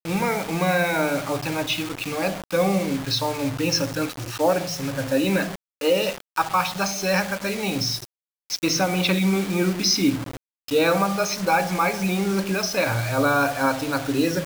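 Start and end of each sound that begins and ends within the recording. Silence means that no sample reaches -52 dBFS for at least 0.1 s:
5.81–6.20 s
6.36–8.05 s
8.50–10.37 s

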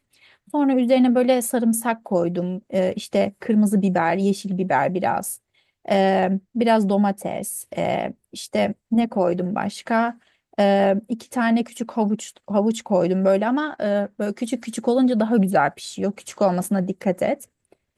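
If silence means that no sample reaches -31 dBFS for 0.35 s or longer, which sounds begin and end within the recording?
0.54–5.36 s
5.86–10.11 s
10.58–17.44 s

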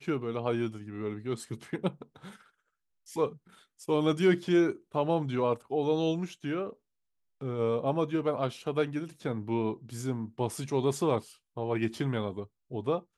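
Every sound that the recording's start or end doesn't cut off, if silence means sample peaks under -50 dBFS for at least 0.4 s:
3.06–6.73 s

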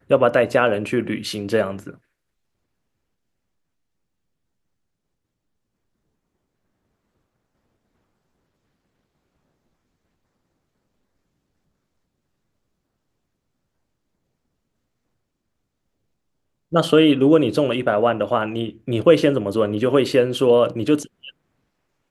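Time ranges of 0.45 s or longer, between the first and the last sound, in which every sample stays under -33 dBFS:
1.91–16.72 s

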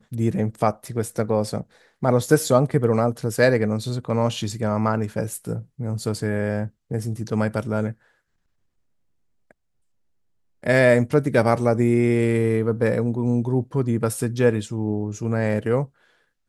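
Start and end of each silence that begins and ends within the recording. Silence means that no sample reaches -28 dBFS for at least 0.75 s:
7.92–10.64 s

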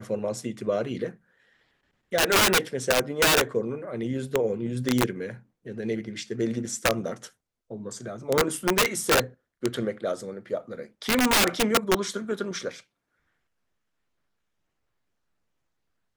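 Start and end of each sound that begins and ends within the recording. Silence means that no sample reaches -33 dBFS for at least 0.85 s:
2.12–12.79 s

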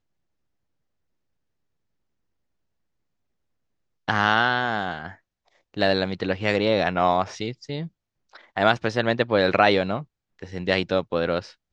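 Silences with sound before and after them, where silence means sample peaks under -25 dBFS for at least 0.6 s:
5.07–5.77 s
7.83–8.57 s

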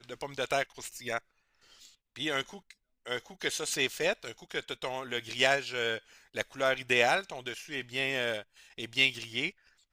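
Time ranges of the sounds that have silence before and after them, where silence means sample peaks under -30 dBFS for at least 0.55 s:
2.20–2.42 s

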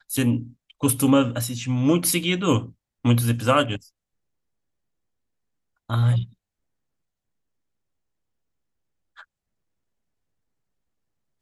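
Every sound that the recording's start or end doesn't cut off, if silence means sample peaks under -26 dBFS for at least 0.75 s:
5.90–6.23 s

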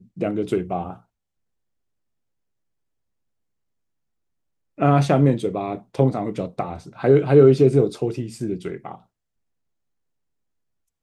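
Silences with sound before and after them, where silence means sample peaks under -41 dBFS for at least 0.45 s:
0.98–4.78 s

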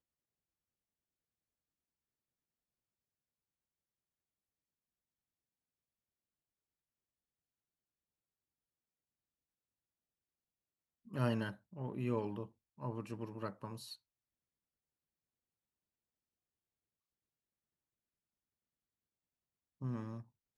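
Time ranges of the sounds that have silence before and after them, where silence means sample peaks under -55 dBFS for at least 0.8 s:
11.07–13.95 s

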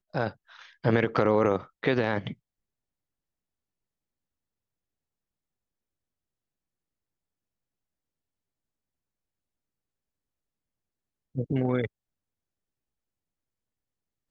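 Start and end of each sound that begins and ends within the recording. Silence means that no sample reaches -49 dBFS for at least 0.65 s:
11.35–11.87 s

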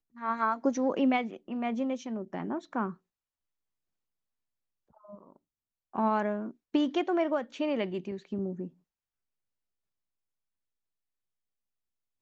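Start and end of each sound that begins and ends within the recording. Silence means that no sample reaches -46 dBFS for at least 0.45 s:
5.05–5.36 s
5.94–8.68 s

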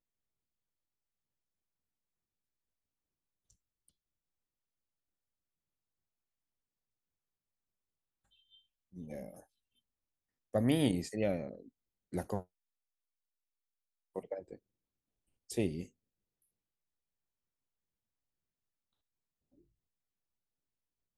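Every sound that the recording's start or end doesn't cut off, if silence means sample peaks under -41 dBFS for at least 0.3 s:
8.98–9.29 s
10.54–11.60 s
12.13–12.41 s
14.16–14.55 s
15.50–15.84 s

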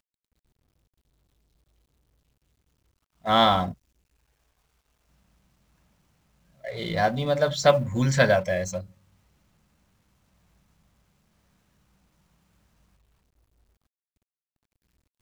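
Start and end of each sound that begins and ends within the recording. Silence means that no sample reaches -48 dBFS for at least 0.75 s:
3.24–3.74 s
6.63–8.92 s

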